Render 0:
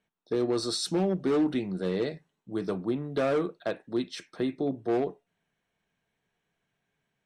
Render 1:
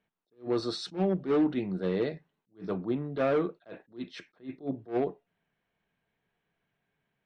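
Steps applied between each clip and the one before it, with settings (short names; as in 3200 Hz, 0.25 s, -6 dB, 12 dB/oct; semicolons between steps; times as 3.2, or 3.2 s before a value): LPF 3400 Hz 12 dB/oct; attack slew limiter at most 250 dB/s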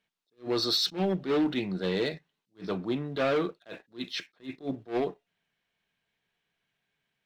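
bell 4200 Hz +13 dB 2.3 oct; sample leveller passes 1; gain -3.5 dB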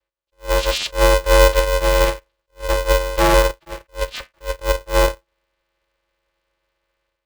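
AGC gain up to 10 dB; vocoder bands 8, saw 296 Hz; polarity switched at an audio rate 250 Hz; gain +4.5 dB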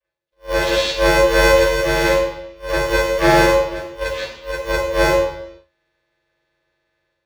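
reverb RT60 0.80 s, pre-delay 33 ms, DRR -7.5 dB; gain -13 dB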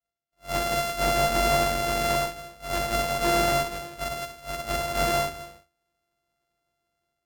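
sample sorter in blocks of 64 samples; tube stage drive 10 dB, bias 0.4; gain -6.5 dB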